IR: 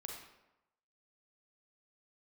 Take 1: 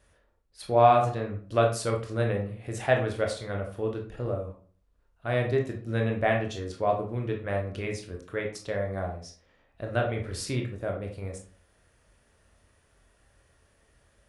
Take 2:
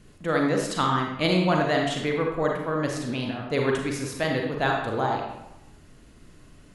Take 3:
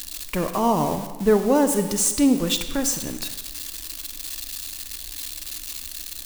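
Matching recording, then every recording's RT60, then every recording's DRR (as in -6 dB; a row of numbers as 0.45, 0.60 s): 2; 0.45, 0.95, 1.3 s; 1.0, 0.0, 8.5 dB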